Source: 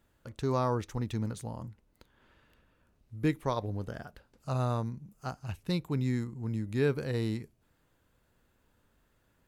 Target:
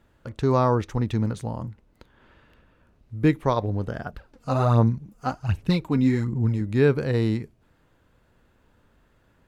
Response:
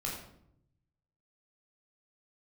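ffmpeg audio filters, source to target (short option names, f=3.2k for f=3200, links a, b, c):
-filter_complex "[0:a]lowpass=f=3.1k:p=1,asettb=1/sr,asplit=3[a][b][c];[a]atrim=end=4.064[d];[b]atrim=start=4.06:end=6.61,asetpts=PTS-STARTPTS,afade=t=in:d=0.004:c=qsin,afade=t=out:st=2.546:d=0.004:c=qsin,aphaser=in_gain=1:out_gain=1:delay=4.2:decay=0.56:speed=1.3:type=sinusoidal[e];[c]atrim=start=6.606[f];[d][e]acrossfade=d=0.004:c1=hsin:c2=qsin[g];[g][f]acrossfade=d=0.004:c1=qsin:c2=hsin,volume=9dB"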